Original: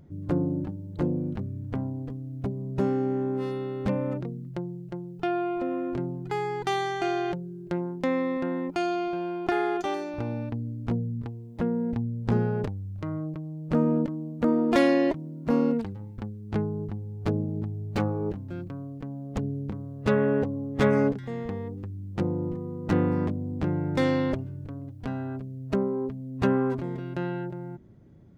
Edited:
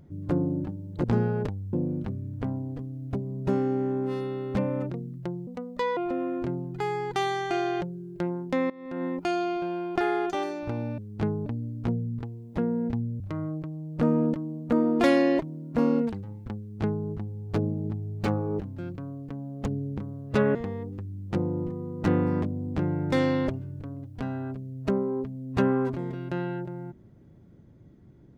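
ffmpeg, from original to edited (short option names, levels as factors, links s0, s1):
-filter_complex "[0:a]asplit=10[s0][s1][s2][s3][s4][s5][s6][s7][s8][s9];[s0]atrim=end=1.042[s10];[s1]atrim=start=12.228:end=12.922[s11];[s2]atrim=start=1.038:end=4.784[s12];[s3]atrim=start=4.78:end=5.48,asetpts=PTS-STARTPTS,asetrate=61740,aresample=44100[s13];[s4]atrim=start=5.476:end=8.21,asetpts=PTS-STARTPTS,afade=t=out:st=2.73:d=0.004:c=hsin:silence=0.105925[s14];[s5]atrim=start=8.21:end=10.492,asetpts=PTS-STARTPTS,afade=t=in:d=0.34:c=qua:silence=0.105925[s15];[s6]atrim=start=16.308:end=16.792[s16];[s7]atrim=start=10.488:end=12.232[s17];[s8]atrim=start=12.918:end=20.272[s18];[s9]atrim=start=21.398[s19];[s10][s11]acrossfade=d=0.004:c1=hsin:c2=hsin[s20];[s20][s12]acrossfade=d=0.004:c1=hsin:c2=hsin[s21];[s21][s13]acrossfade=d=0.004:c1=hsin:c2=hsin[s22];[s14][s15]concat=n=2:v=0:a=1[s23];[s22][s23]acrossfade=d=0.004:c1=hsin:c2=hsin[s24];[s24][s16]acrossfade=d=0.004:c1=hsin:c2=hsin[s25];[s25][s17]acrossfade=d=0.004:c1=hsin:c2=hsin[s26];[s26][s18]acrossfade=d=0.004:c1=hsin:c2=hsin[s27];[s27][s19]acrossfade=d=0.004:c1=hsin:c2=hsin"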